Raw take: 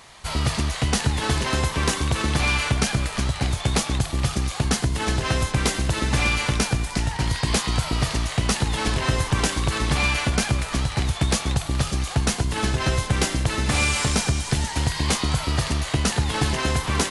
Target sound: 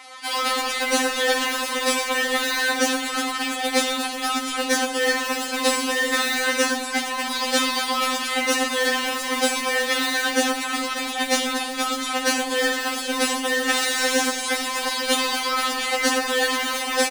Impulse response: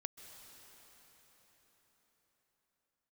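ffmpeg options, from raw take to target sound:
-filter_complex "[0:a]bass=frequency=250:gain=-12,treble=frequency=4000:gain=-5,asplit=2[link_01][link_02];[link_02]aeval=exprs='(mod(18.8*val(0)+1,2)-1)/18.8':channel_layout=same,volume=-10dB[link_03];[link_01][link_03]amix=inputs=2:normalize=0,bandreject=frequency=47.67:width_type=h:width=4,bandreject=frequency=95.34:width_type=h:width=4,bandreject=frequency=143.01:width_type=h:width=4,bandreject=frequency=190.68:width_type=h:width=4,bandreject=frequency=238.35:width_type=h:width=4,bandreject=frequency=286.02:width_type=h:width=4,bandreject=frequency=333.69:width_type=h:width=4,bandreject=frequency=381.36:width_type=h:width=4,bandreject=frequency=429.03:width_type=h:width=4,bandreject=frequency=476.7:width_type=h:width=4,bandreject=frequency=524.37:width_type=h:width=4,bandreject=frequency=572.04:width_type=h:width=4,bandreject=frequency=619.71:width_type=h:width=4,bandreject=frequency=667.38:width_type=h:width=4,bandreject=frequency=715.05:width_type=h:width=4,bandreject=frequency=762.72:width_type=h:width=4,bandreject=frequency=810.39:width_type=h:width=4,bandreject=frequency=858.06:width_type=h:width=4,bandreject=frequency=905.73:width_type=h:width=4,bandreject=frequency=953.4:width_type=h:width=4,bandreject=frequency=1001.07:width_type=h:width=4,bandreject=frequency=1048.74:width_type=h:width=4,afreqshift=71,asettb=1/sr,asplit=3[link_04][link_05][link_06];[link_04]atrim=end=5.624[link_07];[link_05]atrim=start=5.62:end=6.39,asetpts=PTS-STARTPTS,afade=type=in:duration=0.004:curve=qsin,afade=type=out:start_time=0.766:duration=0.004:curve=qsin,asplit=2[link_08][link_09];[link_09]adelay=48,volume=-8dB[link_10];[link_08][link_10]amix=inputs=2:normalize=0,atrim=end_sample=33957[link_11];[link_06]atrim=start=6.386[link_12];[link_07][link_11]acrossfade=duration=0.004:curve1=hsin:curve2=qsin[link_13];[link_13][link_12]acrossfade=duration=0.004:curve1=qsin:curve2=hsin,asplit=2[link_14][link_15];[link_15]asplit=4[link_16][link_17][link_18][link_19];[link_16]adelay=82,afreqshift=-52,volume=-10.5dB[link_20];[link_17]adelay=164,afreqshift=-104,volume=-18.9dB[link_21];[link_18]adelay=246,afreqshift=-156,volume=-27.3dB[link_22];[link_19]adelay=328,afreqshift=-208,volume=-35.7dB[link_23];[link_20][link_21][link_22][link_23]amix=inputs=4:normalize=0[link_24];[link_14][link_24]amix=inputs=2:normalize=0,afftfilt=real='re*3.46*eq(mod(b,12),0)':imag='im*3.46*eq(mod(b,12),0)':win_size=2048:overlap=0.75,volume=7.5dB"

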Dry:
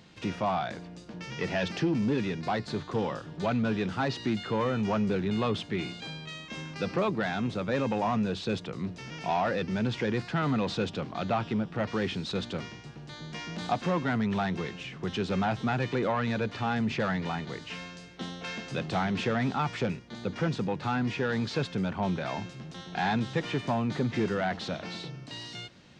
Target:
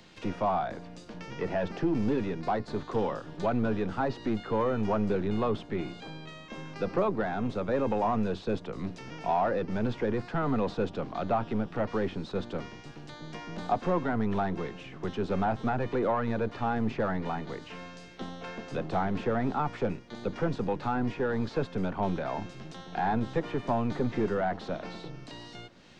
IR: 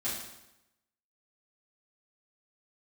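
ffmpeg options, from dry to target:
-filter_complex "[0:a]acrossover=split=260|390|1400[link_01][link_02][link_03][link_04];[link_01]aeval=exprs='max(val(0),0)':channel_layout=same[link_05];[link_04]acompressor=threshold=-51dB:ratio=6[link_06];[link_05][link_02][link_03][link_06]amix=inputs=4:normalize=0,volume=2dB"

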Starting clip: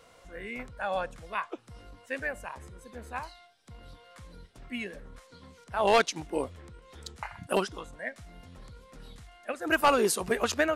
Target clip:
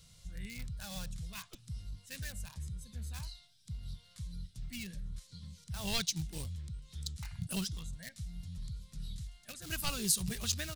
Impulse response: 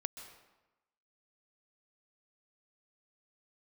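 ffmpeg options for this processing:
-filter_complex "[0:a]asplit=2[link_01][link_02];[link_02]aeval=exprs='(mod(33.5*val(0)+1,2)-1)/33.5':channel_layout=same,volume=-10dB[link_03];[link_01][link_03]amix=inputs=2:normalize=0,firequalizer=gain_entry='entry(170,0);entry(260,-21);entry(470,-28);entry(900,-27);entry(3900,-4)':delay=0.05:min_phase=1,volume=5dB"

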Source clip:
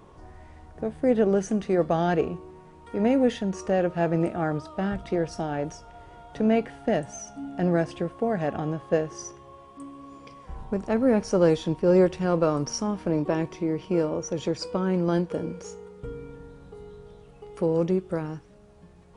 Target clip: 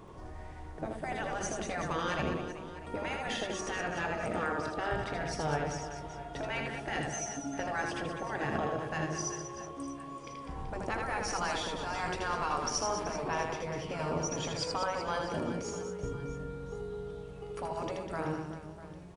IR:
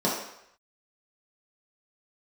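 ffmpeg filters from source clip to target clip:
-af "afftfilt=real='re*lt(hypot(re,im),0.2)':imag='im*lt(hypot(re,im),0.2)':win_size=1024:overlap=0.75,aecho=1:1:80|200|380|650|1055:0.631|0.398|0.251|0.158|0.1"

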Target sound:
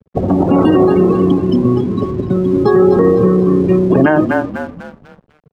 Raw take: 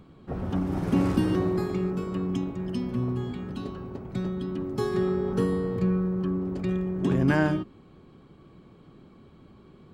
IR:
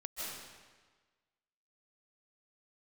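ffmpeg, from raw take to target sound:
-filter_complex "[0:a]afftdn=noise_reduction=30:noise_floor=-34,atempo=1.8,equalizer=frequency=100:width_type=o:width=0.81:gain=7.5,acrossover=split=240[link_01][link_02];[link_01]acompressor=threshold=-40dB:ratio=16[link_03];[link_02]asplit=6[link_04][link_05][link_06][link_07][link_08][link_09];[link_05]adelay=248,afreqshift=-32,volume=-11dB[link_10];[link_06]adelay=496,afreqshift=-64,volume=-17.7dB[link_11];[link_07]adelay=744,afreqshift=-96,volume=-24.5dB[link_12];[link_08]adelay=992,afreqshift=-128,volume=-31.2dB[link_13];[link_09]adelay=1240,afreqshift=-160,volume=-38dB[link_14];[link_04][link_10][link_11][link_12][link_13][link_14]amix=inputs=6:normalize=0[link_15];[link_03][link_15]amix=inputs=2:normalize=0,aeval=exprs='sgn(val(0))*max(abs(val(0))-0.00112,0)':channel_layout=same,acrossover=split=160|3000[link_16][link_17][link_18];[link_16]acompressor=threshold=-32dB:ratio=6[link_19];[link_19][link_17][link_18]amix=inputs=3:normalize=0,adynamicequalizer=threshold=0.00501:dfrequency=690:dqfactor=1.6:tfrequency=690:tqfactor=1.6:attack=5:release=100:ratio=0.375:range=2.5:mode=boostabove:tftype=bell,alimiter=level_in=21.5dB:limit=-1dB:release=50:level=0:latency=1,volume=-1dB"

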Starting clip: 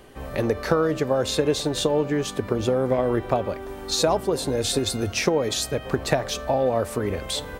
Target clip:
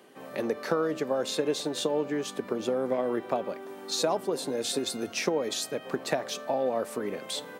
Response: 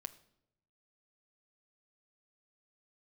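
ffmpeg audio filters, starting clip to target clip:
-af "highpass=frequency=180:width=0.5412,highpass=frequency=180:width=1.3066,volume=-6dB"

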